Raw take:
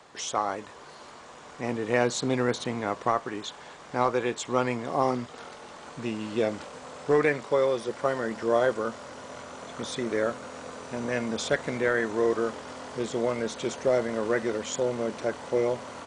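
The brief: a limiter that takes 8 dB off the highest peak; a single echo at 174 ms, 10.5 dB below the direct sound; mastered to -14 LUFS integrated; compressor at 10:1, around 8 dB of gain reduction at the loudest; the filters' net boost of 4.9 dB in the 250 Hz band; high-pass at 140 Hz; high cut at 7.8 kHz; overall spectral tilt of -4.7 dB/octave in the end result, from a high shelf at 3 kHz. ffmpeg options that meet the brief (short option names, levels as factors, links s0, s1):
-af "highpass=140,lowpass=7800,equalizer=f=250:t=o:g=6.5,highshelf=f=3000:g=-9,acompressor=threshold=0.0562:ratio=10,alimiter=limit=0.0708:level=0:latency=1,aecho=1:1:174:0.299,volume=10"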